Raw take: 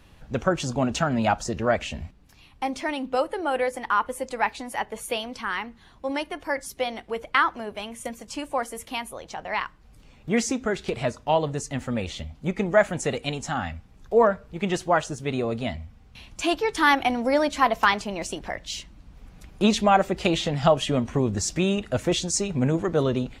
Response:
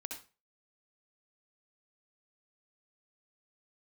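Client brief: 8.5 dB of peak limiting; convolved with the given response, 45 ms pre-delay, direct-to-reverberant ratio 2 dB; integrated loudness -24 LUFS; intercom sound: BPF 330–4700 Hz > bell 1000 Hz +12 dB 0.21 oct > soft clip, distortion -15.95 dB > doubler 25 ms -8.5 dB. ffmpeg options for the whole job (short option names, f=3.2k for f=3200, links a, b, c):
-filter_complex "[0:a]alimiter=limit=-14dB:level=0:latency=1,asplit=2[a][b];[1:a]atrim=start_sample=2205,adelay=45[c];[b][c]afir=irnorm=-1:irlink=0,volume=0dB[d];[a][d]amix=inputs=2:normalize=0,highpass=330,lowpass=4.7k,equalizer=f=1k:t=o:w=0.21:g=12,asoftclip=threshold=-14dB,asplit=2[e][f];[f]adelay=25,volume=-8.5dB[g];[e][g]amix=inputs=2:normalize=0,volume=2dB"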